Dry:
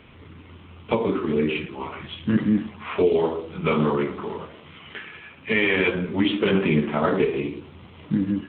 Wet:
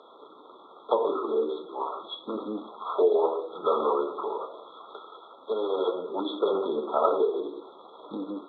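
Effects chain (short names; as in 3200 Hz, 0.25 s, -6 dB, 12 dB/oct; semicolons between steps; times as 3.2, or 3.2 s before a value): HPF 430 Hz 24 dB/oct; in parallel at 0 dB: compressor, threshold -37 dBFS, peak gain reduction 17.5 dB; on the sum: brick-wall FIR band-stop 1400–3300 Hz; air absorption 130 m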